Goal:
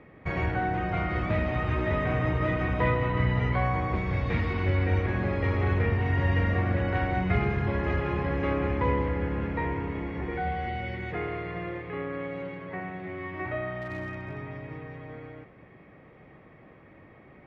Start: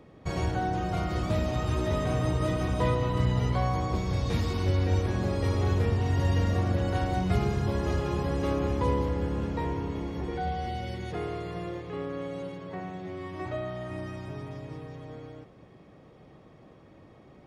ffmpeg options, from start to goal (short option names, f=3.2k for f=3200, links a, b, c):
-filter_complex "[0:a]lowpass=f=2.1k:t=q:w=3.2,asettb=1/sr,asplit=3[a][b][c];[a]atrim=end=13.814[d];[b]atrim=start=13.81:end=14.48,asetpts=PTS-STARTPTS,afade=t=in:d=0.004:c=qsin,afade=t=out:st=0.666:d=0.004:c=qsin,volume=29dB,asoftclip=hard,volume=-29dB[e];[c]atrim=start=14.476[f];[d][e]acrossfade=d=0.004:c1=hsin:c2=qsin[g];[g][f]acrossfade=d=0.004:c1=qsin:c2=hsin"